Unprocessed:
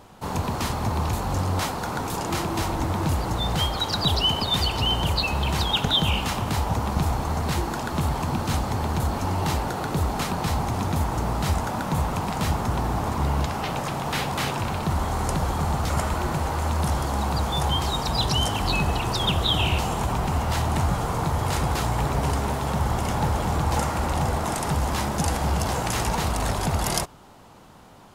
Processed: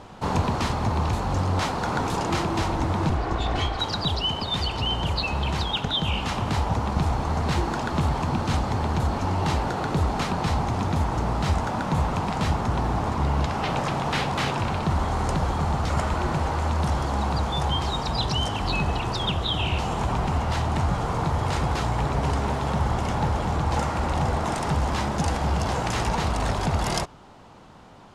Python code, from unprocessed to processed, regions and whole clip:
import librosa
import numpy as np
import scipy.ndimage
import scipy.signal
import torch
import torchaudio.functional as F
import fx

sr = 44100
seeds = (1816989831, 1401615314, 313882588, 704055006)

y = fx.chain(x, sr, fx.lower_of_two(delay_ms=2.7),
    fx.lowpass(hz=2600.0, slope=6), at=(3.09, 3.79))
y = scipy.signal.sosfilt(scipy.signal.bessel(2, 5400.0, 'lowpass', norm='mag', fs=sr, output='sos'), y)
y = fx.rider(y, sr, range_db=10, speed_s=0.5)